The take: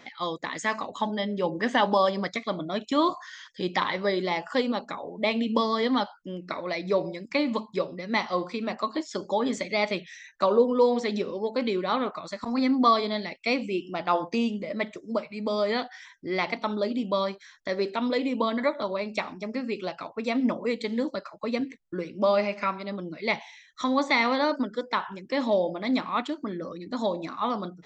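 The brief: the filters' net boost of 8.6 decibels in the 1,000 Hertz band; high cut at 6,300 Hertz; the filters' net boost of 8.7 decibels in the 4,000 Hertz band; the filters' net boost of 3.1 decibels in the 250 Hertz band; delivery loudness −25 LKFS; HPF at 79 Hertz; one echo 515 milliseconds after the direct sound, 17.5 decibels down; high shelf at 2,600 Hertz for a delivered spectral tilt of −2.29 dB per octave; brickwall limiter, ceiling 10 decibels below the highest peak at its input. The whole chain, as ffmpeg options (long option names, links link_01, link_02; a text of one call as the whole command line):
ffmpeg -i in.wav -af "highpass=79,lowpass=6300,equalizer=frequency=250:width_type=o:gain=3,equalizer=frequency=1000:width_type=o:gain=8.5,highshelf=frequency=2600:gain=8.5,equalizer=frequency=4000:width_type=o:gain=3.5,alimiter=limit=-13dB:level=0:latency=1,aecho=1:1:515:0.133,volume=0.5dB" out.wav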